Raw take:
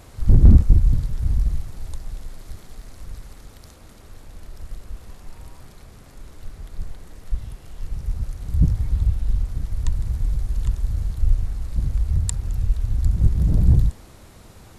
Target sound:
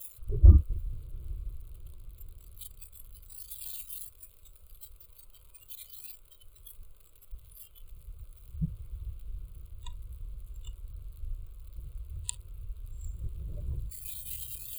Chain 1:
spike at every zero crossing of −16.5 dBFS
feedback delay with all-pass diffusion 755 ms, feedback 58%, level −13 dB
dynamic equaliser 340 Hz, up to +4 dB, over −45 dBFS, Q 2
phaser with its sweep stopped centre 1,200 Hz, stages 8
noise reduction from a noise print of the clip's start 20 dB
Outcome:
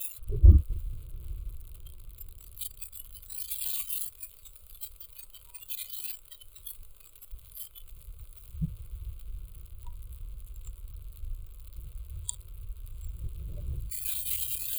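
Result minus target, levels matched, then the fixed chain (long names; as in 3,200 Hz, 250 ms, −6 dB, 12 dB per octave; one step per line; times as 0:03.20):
spike at every zero crossing: distortion +8 dB
spike at every zero crossing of −24.5 dBFS
feedback delay with all-pass diffusion 755 ms, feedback 58%, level −13 dB
dynamic equaliser 340 Hz, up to +4 dB, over −45 dBFS, Q 2
phaser with its sweep stopped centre 1,200 Hz, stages 8
noise reduction from a noise print of the clip's start 20 dB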